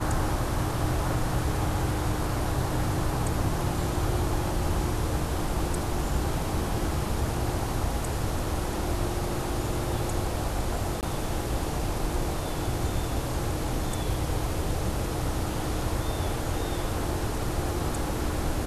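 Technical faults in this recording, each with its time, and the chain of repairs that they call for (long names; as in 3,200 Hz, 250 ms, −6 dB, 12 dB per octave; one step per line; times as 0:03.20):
0:11.01–0:11.03: drop-out 18 ms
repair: repair the gap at 0:11.01, 18 ms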